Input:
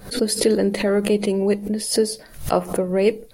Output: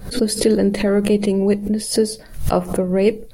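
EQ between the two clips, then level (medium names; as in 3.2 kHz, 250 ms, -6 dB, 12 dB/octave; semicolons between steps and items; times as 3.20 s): bass shelf 170 Hz +11 dB; 0.0 dB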